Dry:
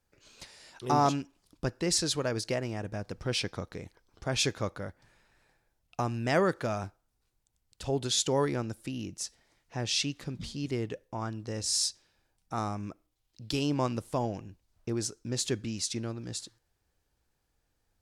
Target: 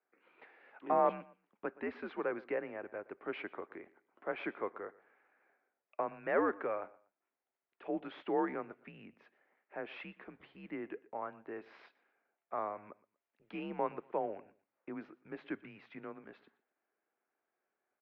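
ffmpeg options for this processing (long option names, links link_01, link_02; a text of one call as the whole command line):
ffmpeg -i in.wav -filter_complex "[0:a]acrossover=split=1100[link_01][link_02];[link_02]asoftclip=type=tanh:threshold=-26.5dB[link_03];[link_01][link_03]amix=inputs=2:normalize=0,highpass=frequency=430:width_type=q:width=0.5412,highpass=frequency=430:width_type=q:width=1.307,lowpass=frequency=2400:width_type=q:width=0.5176,lowpass=frequency=2400:width_type=q:width=0.7071,lowpass=frequency=2400:width_type=q:width=1.932,afreqshift=-95,aecho=1:1:120|240:0.0891|0.0232,volume=-2.5dB" out.wav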